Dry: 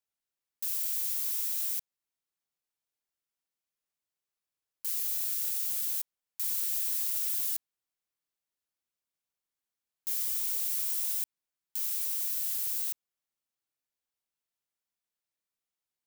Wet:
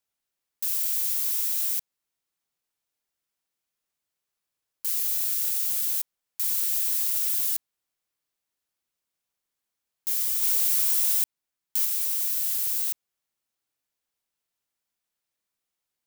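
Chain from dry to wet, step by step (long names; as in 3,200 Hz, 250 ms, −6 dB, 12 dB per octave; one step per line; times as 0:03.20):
0:10.42–0:11.85: leveller curve on the samples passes 1
level +5.5 dB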